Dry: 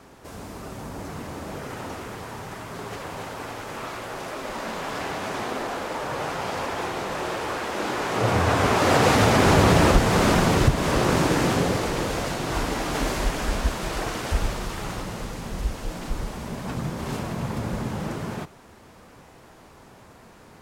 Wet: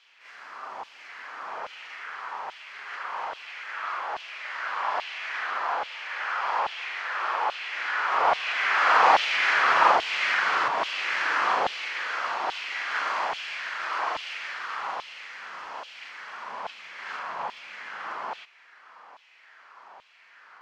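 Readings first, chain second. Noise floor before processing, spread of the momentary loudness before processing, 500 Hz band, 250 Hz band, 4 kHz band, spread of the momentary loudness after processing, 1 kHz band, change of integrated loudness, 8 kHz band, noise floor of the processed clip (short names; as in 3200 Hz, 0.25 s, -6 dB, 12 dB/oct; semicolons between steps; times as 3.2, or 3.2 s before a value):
-50 dBFS, 17 LU, -10.5 dB, -25.0 dB, -2.0 dB, 19 LU, +1.5 dB, -2.0 dB, -14.5 dB, -55 dBFS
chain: notch 3700 Hz, Q 16; reverse echo 42 ms -5.5 dB; LFO high-pass saw down 1.2 Hz 800–3200 Hz; air absorption 210 m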